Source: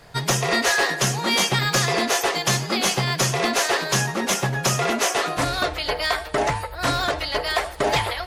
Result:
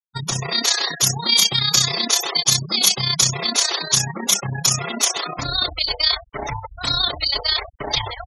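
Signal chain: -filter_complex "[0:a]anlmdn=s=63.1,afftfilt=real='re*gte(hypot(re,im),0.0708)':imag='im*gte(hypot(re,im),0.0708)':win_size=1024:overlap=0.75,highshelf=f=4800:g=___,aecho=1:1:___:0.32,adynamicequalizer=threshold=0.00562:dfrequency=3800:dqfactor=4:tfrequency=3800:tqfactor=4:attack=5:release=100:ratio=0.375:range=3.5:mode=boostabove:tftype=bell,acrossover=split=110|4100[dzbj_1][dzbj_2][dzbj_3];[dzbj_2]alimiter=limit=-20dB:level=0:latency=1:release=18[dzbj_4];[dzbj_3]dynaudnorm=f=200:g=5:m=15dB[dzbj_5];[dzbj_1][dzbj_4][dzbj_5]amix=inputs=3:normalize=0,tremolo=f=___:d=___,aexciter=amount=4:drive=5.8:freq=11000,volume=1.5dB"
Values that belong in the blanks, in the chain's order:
-4, 0.9, 31, 0.621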